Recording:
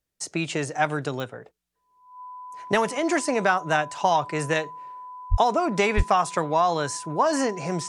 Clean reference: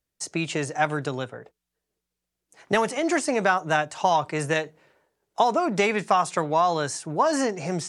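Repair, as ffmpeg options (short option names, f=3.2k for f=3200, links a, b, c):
-filter_complex "[0:a]adeclick=t=4,bandreject=f=1k:w=30,asplit=3[a][b][c];[a]afade=t=out:st=5.3:d=0.02[d];[b]highpass=f=140:w=0.5412,highpass=f=140:w=1.3066,afade=t=in:st=5.3:d=0.02,afade=t=out:st=5.42:d=0.02[e];[c]afade=t=in:st=5.42:d=0.02[f];[d][e][f]amix=inputs=3:normalize=0,asplit=3[g][h][i];[g]afade=t=out:st=5.96:d=0.02[j];[h]highpass=f=140:w=0.5412,highpass=f=140:w=1.3066,afade=t=in:st=5.96:d=0.02,afade=t=out:st=6.08:d=0.02[k];[i]afade=t=in:st=6.08:d=0.02[l];[j][k][l]amix=inputs=3:normalize=0"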